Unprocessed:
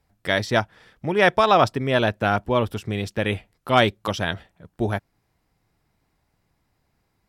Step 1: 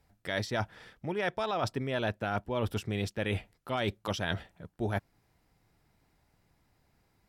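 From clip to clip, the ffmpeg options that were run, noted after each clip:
-af "bandreject=f=1.1k:w=21,alimiter=limit=-11dB:level=0:latency=1:release=58,areverse,acompressor=threshold=-29dB:ratio=6,areverse"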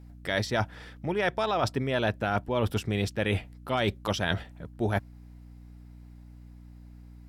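-af "aeval=exprs='val(0)+0.00282*(sin(2*PI*60*n/s)+sin(2*PI*2*60*n/s)/2+sin(2*PI*3*60*n/s)/3+sin(2*PI*4*60*n/s)/4+sin(2*PI*5*60*n/s)/5)':c=same,volume=4.5dB"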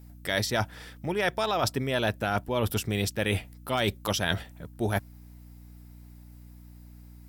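-af "aemphasis=mode=production:type=50fm"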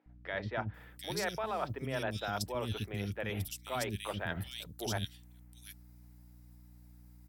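-filter_complex "[0:a]acrossover=split=330|2800[a][b][c];[a]adelay=60[d];[c]adelay=740[e];[d][b][e]amix=inputs=3:normalize=0,volume=-7.5dB"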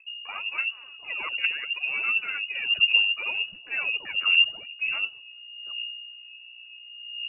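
-af "aphaser=in_gain=1:out_gain=1:delay=4.6:decay=0.79:speed=0.69:type=triangular,lowshelf=f=410:t=q:w=1.5:g=12,lowpass=f=2.5k:t=q:w=0.5098,lowpass=f=2.5k:t=q:w=0.6013,lowpass=f=2.5k:t=q:w=0.9,lowpass=f=2.5k:t=q:w=2.563,afreqshift=-2900,volume=-2.5dB"

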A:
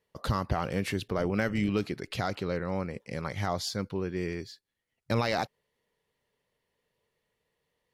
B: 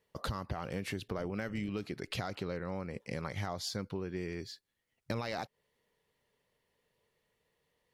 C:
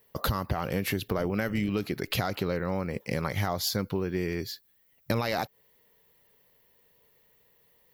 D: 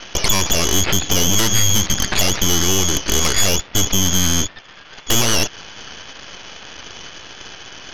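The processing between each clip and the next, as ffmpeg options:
-af "acompressor=threshold=-35dB:ratio=6,volume=1dB"
-af "aexciter=amount=7.1:drive=6.8:freq=12k,volume=8.5dB"
-af "aeval=exprs='val(0)+0.5*0.0447*sgn(val(0))':c=same,lowpass=f=3k:t=q:w=0.5098,lowpass=f=3k:t=q:w=0.6013,lowpass=f=3k:t=q:w=0.9,lowpass=f=3k:t=q:w=2.563,afreqshift=-3500,aeval=exprs='0.299*(cos(1*acos(clip(val(0)/0.299,-1,1)))-cos(1*PI/2))+0.0335*(cos(3*acos(clip(val(0)/0.299,-1,1)))-cos(3*PI/2))+0.133*(cos(8*acos(clip(val(0)/0.299,-1,1)))-cos(8*PI/2))':c=same,volume=4dB"

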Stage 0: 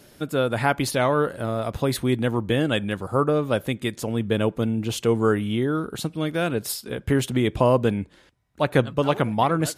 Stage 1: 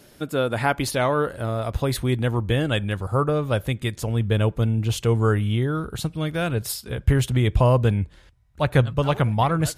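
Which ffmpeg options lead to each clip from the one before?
-af "asubboost=boost=7.5:cutoff=93"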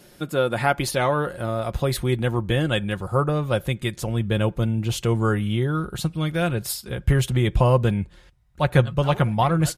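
-af "aecho=1:1:5.6:0.4"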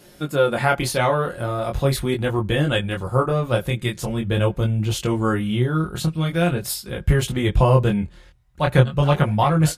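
-af "flanger=delay=19.5:depth=5.8:speed=0.42,volume=5dB"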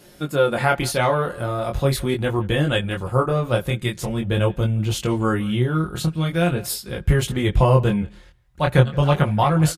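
-filter_complex "[0:a]asplit=2[a][b];[b]adelay=170,highpass=300,lowpass=3.4k,asoftclip=type=hard:threshold=-10dB,volume=-21dB[c];[a][c]amix=inputs=2:normalize=0"

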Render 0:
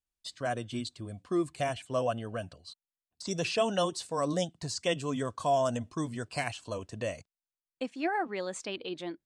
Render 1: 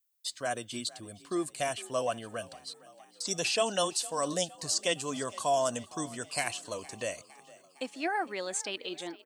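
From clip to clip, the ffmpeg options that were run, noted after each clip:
-filter_complex "[0:a]aemphasis=mode=production:type=bsi,asplit=6[a][b][c][d][e][f];[b]adelay=460,afreqshift=36,volume=-20.5dB[g];[c]adelay=920,afreqshift=72,volume=-24.8dB[h];[d]adelay=1380,afreqshift=108,volume=-29.1dB[i];[e]adelay=1840,afreqshift=144,volume=-33.4dB[j];[f]adelay=2300,afreqshift=180,volume=-37.7dB[k];[a][g][h][i][j][k]amix=inputs=6:normalize=0"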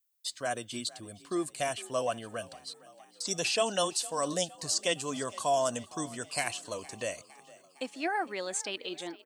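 -af anull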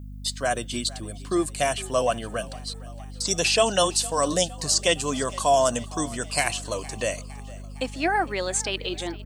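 -af "aeval=exprs='val(0)+0.00562*(sin(2*PI*50*n/s)+sin(2*PI*2*50*n/s)/2+sin(2*PI*3*50*n/s)/3+sin(2*PI*4*50*n/s)/4+sin(2*PI*5*50*n/s)/5)':c=same,volume=8dB"

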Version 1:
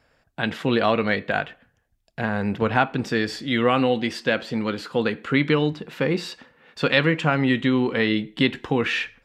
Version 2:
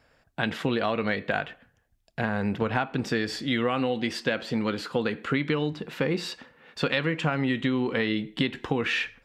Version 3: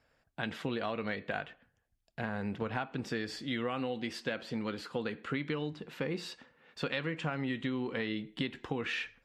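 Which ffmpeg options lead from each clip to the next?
-af "acompressor=threshold=-22dB:ratio=6"
-af "volume=-8.5dB" -ar 32000 -c:a libmp3lame -b:a 56k

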